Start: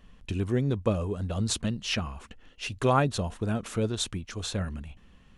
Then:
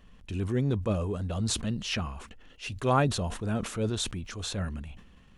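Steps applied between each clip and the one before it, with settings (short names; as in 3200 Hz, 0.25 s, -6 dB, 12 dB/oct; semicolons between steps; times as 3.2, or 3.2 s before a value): transient shaper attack -6 dB, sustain 0 dB; sustainer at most 90 dB/s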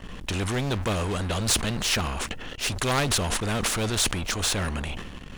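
low shelf 110 Hz +11.5 dB; sample leveller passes 2; spectral compressor 2:1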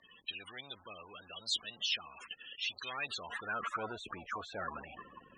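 soft clip -18 dBFS, distortion -19 dB; loudest bins only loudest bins 32; band-pass sweep 3800 Hz -> 1000 Hz, 2.77–3.89; gain +2.5 dB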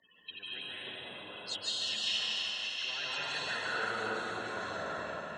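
regenerating reverse delay 0.168 s, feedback 62%, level -4.5 dB; notch comb 1200 Hz; reverb RT60 2.8 s, pre-delay 0.142 s, DRR -8 dB; gain -4.5 dB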